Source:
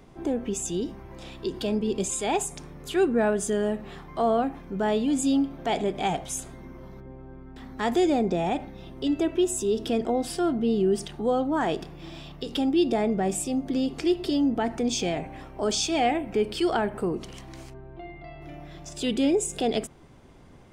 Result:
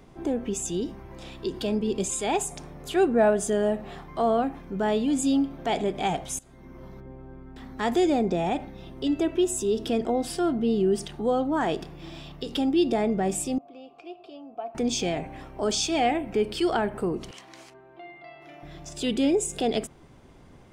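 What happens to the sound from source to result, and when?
2.46–4.04 bell 690 Hz +7 dB 0.51 oct
6.39–6.83 fade in, from -20.5 dB
13.58–14.75 vowel filter a
17.31–18.63 weighting filter A

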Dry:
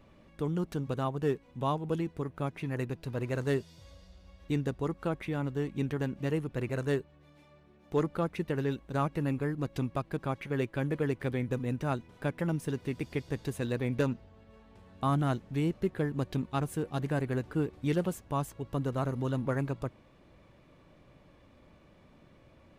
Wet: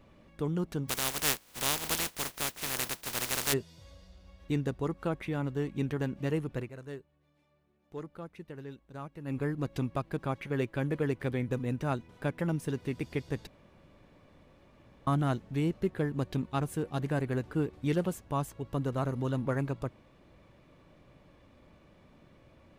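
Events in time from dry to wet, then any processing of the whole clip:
0.88–3.52 spectral contrast lowered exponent 0.18
6.56–9.37 dip -12.5 dB, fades 0.13 s
13.47–15.07 room tone

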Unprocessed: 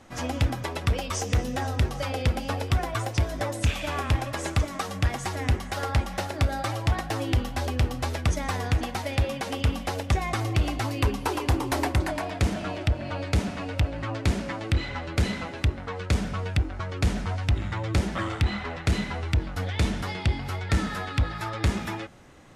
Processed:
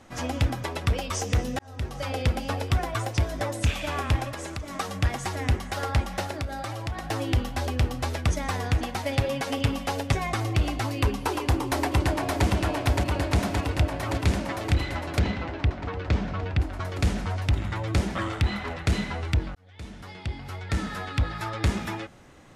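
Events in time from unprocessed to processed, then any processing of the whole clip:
1.59–2.13 fade in
4.29–4.75 compressor, threshold -31 dBFS
6.33–7.1 compressor 3:1, threshold -30 dBFS
9.05–10.27 comb 7.2 ms
11.34–12.46 echo throw 0.57 s, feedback 80%, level -3 dB
15.19–16.6 air absorption 160 m
19.55–21.32 fade in

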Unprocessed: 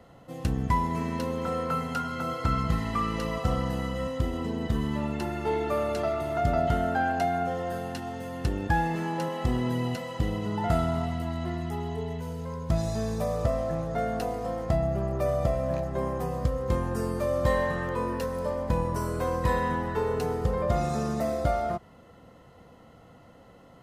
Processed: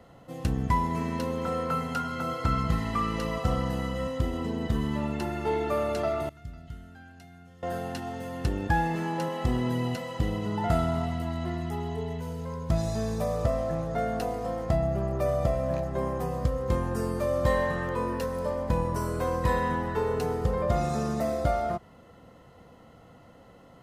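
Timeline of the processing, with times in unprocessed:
6.29–7.63 passive tone stack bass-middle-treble 6-0-2

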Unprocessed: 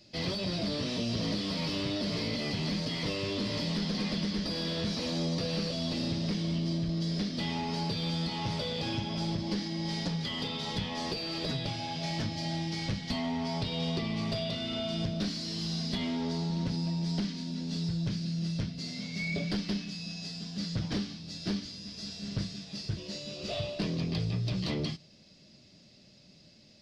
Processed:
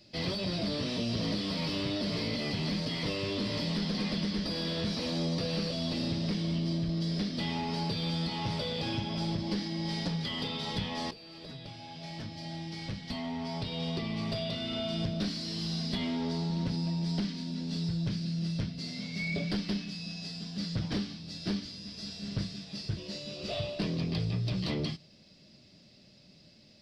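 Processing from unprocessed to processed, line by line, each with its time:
11.11–14.84 fade in, from -15 dB
whole clip: bell 6600 Hz -6.5 dB 0.26 oct

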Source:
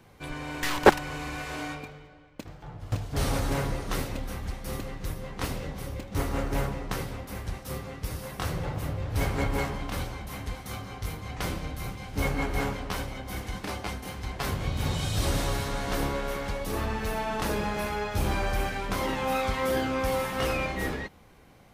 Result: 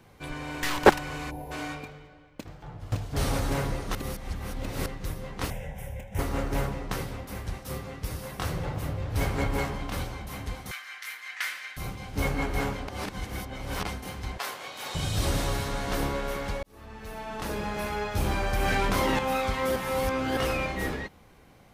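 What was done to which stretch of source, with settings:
1.31–1.52 spectral gain 1000–10000 Hz -22 dB
3.95–4.86 reverse
5.5–6.19 fixed phaser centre 1200 Hz, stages 6
10.71–11.77 resonant high-pass 1800 Hz, resonance Q 3.5
12.88–13.85 reverse
14.38–14.95 HPF 640 Hz
16.63–17.99 fade in linear
18.53–19.19 fast leveller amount 100%
19.76–20.37 reverse

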